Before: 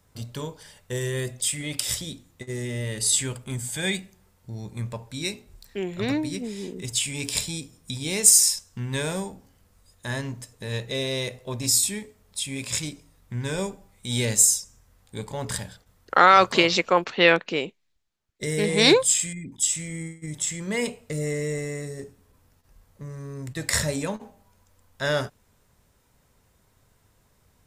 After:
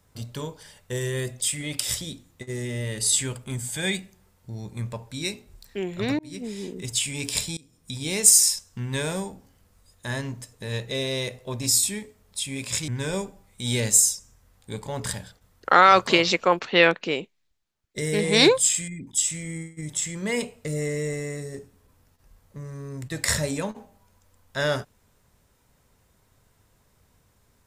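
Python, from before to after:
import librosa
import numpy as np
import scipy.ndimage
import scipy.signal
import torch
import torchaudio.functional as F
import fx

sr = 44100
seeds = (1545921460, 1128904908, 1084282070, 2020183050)

y = fx.edit(x, sr, fx.fade_in_span(start_s=6.19, length_s=0.3),
    fx.fade_in_from(start_s=7.57, length_s=0.44, floor_db=-23.5),
    fx.cut(start_s=12.88, length_s=0.45), tone=tone)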